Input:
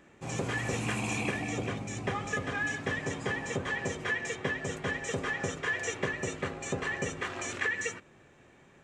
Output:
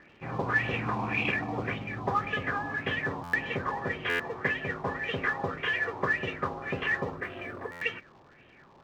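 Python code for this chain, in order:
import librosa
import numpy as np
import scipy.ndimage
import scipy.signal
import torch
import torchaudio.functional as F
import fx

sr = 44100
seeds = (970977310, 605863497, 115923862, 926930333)

y = fx.filter_lfo_lowpass(x, sr, shape='sine', hz=1.8, low_hz=930.0, high_hz=3100.0, q=4.4)
y = fx.mod_noise(y, sr, seeds[0], snr_db=17)
y = fx.spec_box(y, sr, start_s=7.17, length_s=0.63, low_hz=740.0, high_hz=7800.0, gain_db=-8)
y = fx.dmg_crackle(y, sr, seeds[1], per_s=260.0, level_db=-45.0)
y = fx.air_absorb(y, sr, metres=190.0)
y = fx.buffer_glitch(y, sr, at_s=(3.23, 4.09, 7.71), block=512, repeats=8)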